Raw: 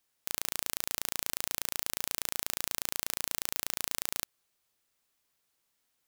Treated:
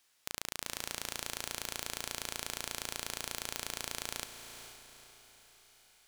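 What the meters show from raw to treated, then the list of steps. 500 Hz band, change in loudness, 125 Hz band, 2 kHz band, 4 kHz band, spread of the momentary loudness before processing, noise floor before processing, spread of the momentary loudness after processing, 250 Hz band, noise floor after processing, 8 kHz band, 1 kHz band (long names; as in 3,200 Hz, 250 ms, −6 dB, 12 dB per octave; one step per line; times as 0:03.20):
0.0 dB, −6.0 dB, 0.0 dB, −1.5 dB, −1.5 dB, 2 LU, −78 dBFS, 16 LU, −1.0 dB, −72 dBFS, −4.5 dB, −1.0 dB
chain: high-shelf EQ 11,000 Hz −10.5 dB
soft clipping −12 dBFS, distortion −18 dB
feedback delay with all-pass diffusion 463 ms, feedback 46%, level −9 dB
one half of a high-frequency compander encoder only
level +1 dB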